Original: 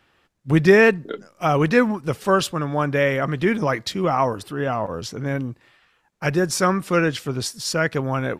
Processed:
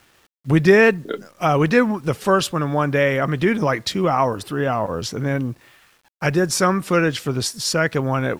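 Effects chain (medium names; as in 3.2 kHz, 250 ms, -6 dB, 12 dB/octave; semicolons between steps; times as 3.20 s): in parallel at -0.5 dB: compression, threshold -25 dBFS, peak gain reduction 15.5 dB; on the sum: bit crusher 9-bit; trim -1 dB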